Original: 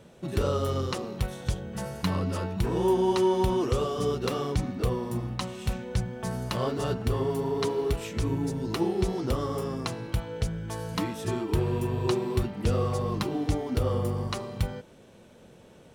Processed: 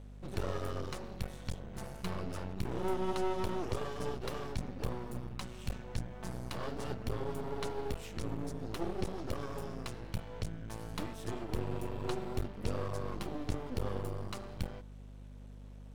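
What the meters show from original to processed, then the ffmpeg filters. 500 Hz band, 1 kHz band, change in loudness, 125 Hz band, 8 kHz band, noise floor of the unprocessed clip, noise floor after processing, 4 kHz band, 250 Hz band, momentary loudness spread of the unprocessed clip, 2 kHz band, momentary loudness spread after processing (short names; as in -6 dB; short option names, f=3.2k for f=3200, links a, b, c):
-11.5 dB, -9.0 dB, -10.5 dB, -11.0 dB, -9.5 dB, -53 dBFS, -49 dBFS, -10.0 dB, -11.0 dB, 8 LU, -7.5 dB, 7 LU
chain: -af "aeval=exprs='max(val(0),0)':c=same,aeval=exprs='val(0)+0.00794*(sin(2*PI*50*n/s)+sin(2*PI*2*50*n/s)/2+sin(2*PI*3*50*n/s)/3+sin(2*PI*4*50*n/s)/4+sin(2*PI*5*50*n/s)/5)':c=same,volume=-6dB"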